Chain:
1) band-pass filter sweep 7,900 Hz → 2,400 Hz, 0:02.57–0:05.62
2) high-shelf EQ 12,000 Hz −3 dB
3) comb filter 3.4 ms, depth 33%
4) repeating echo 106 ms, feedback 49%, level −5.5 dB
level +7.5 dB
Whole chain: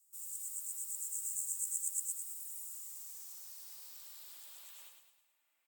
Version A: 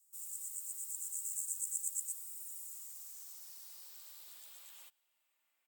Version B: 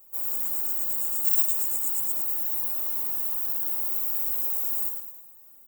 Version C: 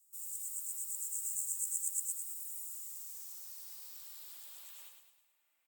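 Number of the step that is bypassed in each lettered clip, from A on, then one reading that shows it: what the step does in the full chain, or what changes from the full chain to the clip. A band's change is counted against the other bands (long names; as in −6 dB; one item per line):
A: 4, echo-to-direct ratio −4.5 dB to none audible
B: 1, change in momentary loudness spread −10 LU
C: 2, change in integrated loudness +1.0 LU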